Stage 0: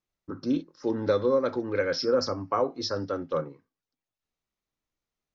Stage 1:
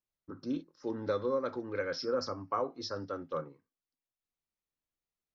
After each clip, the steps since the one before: dynamic EQ 1200 Hz, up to +4 dB, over -43 dBFS, Q 2; gain -8.5 dB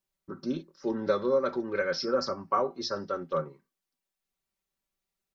comb 5.2 ms, depth 65%; gain +4.5 dB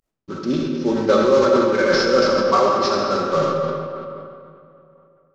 CVSD 32 kbps; digital reverb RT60 2.7 s, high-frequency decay 0.65×, pre-delay 20 ms, DRR -1.5 dB; sustainer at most 33 dB/s; gain +8.5 dB

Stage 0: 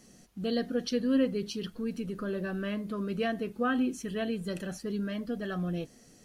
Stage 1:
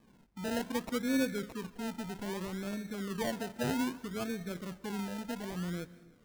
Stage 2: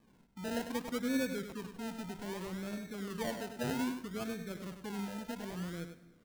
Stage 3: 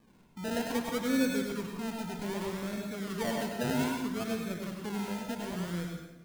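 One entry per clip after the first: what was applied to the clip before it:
Wiener smoothing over 25 samples; decimation with a swept rate 31×, swing 60% 0.63 Hz; plate-style reverb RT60 0.93 s, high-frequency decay 0.75×, pre-delay 0.12 s, DRR 18 dB; gain -4 dB
echo 99 ms -8.5 dB; gain -3 dB
plate-style reverb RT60 0.68 s, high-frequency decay 0.95×, pre-delay 85 ms, DRR 2 dB; gain +3.5 dB

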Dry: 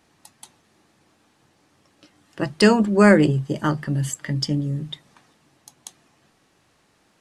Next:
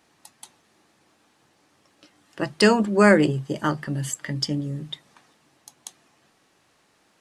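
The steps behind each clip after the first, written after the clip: low shelf 190 Hz -8 dB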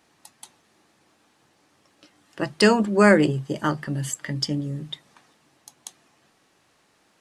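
nothing audible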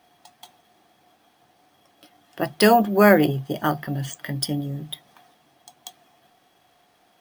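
small resonant body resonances 720/3300 Hz, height 16 dB, ringing for 65 ms; careless resampling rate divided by 3×, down filtered, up hold

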